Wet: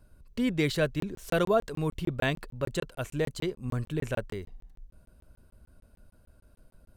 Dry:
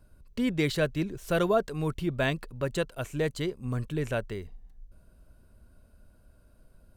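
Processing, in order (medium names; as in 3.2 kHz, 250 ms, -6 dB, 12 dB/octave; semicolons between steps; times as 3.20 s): crackling interface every 0.15 s, samples 1024, zero, from 1.00 s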